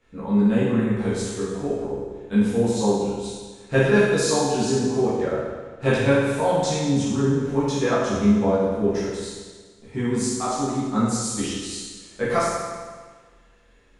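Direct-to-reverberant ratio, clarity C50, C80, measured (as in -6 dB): -11.5 dB, -2.0 dB, 1.0 dB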